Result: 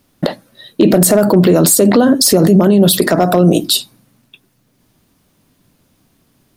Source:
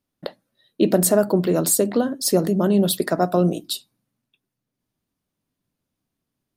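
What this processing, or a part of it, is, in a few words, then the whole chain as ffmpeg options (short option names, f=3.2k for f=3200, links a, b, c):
loud club master: -af "acompressor=threshold=-22dB:ratio=2,asoftclip=type=hard:threshold=-13.5dB,alimiter=level_in=24.5dB:limit=-1dB:release=50:level=0:latency=1,volume=-1dB"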